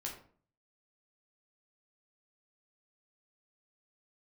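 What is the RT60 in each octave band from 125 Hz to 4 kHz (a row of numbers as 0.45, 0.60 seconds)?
0.65, 0.60, 0.50, 0.45, 0.40, 0.30 seconds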